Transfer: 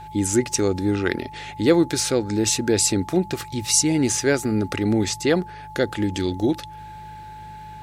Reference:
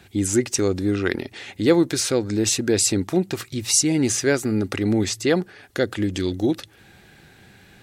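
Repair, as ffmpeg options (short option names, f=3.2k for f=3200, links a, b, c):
-af "bandreject=f=51.6:t=h:w=4,bandreject=f=103.2:t=h:w=4,bandreject=f=154.8:t=h:w=4,bandreject=f=860:w=30"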